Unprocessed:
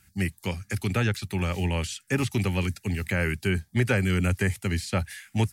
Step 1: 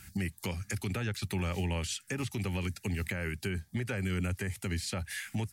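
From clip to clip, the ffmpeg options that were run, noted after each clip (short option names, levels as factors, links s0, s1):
-af "acompressor=threshold=0.01:ratio=2,alimiter=level_in=2.99:limit=0.0631:level=0:latency=1:release=226,volume=0.335,volume=2.66"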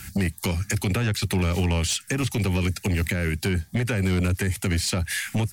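-filter_complex "[0:a]acrossover=split=390|3000[s0][s1][s2];[s1]acompressor=threshold=0.0112:ratio=6[s3];[s0][s3][s2]amix=inputs=3:normalize=0,aeval=exprs='0.0794*sin(PI/2*1.78*val(0)/0.0794)':c=same,volume=1.5"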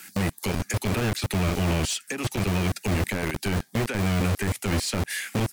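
-filter_complex "[0:a]aeval=exprs='0.126*(cos(1*acos(clip(val(0)/0.126,-1,1)))-cos(1*PI/2))+0.00631*(cos(6*acos(clip(val(0)/0.126,-1,1)))-cos(6*PI/2))':c=same,acrossover=split=220|2400[s0][s1][s2];[s0]acrusher=bits=3:mix=0:aa=0.000001[s3];[s3][s1][s2]amix=inputs=3:normalize=0,volume=0.708"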